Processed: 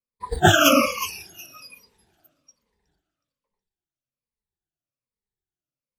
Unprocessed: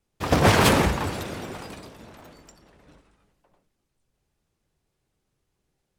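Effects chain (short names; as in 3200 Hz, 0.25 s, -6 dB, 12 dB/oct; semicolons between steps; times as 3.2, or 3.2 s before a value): moving spectral ripple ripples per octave 0.92, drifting -1.2 Hz, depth 19 dB; thin delay 0.368 s, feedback 37%, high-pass 2900 Hz, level -8 dB; spectral noise reduction 24 dB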